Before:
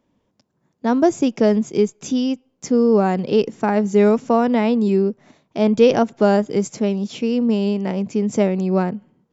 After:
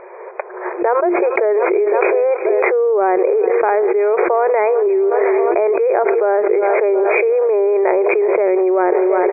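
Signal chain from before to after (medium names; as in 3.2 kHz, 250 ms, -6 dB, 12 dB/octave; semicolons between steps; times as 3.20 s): recorder AGC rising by 20 dB/s; FFT band-pass 350–2500 Hz; distance through air 230 m; on a send: feedback delay 359 ms, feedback 57%, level -21 dB; on the sum: level flattener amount 100%; trim -4 dB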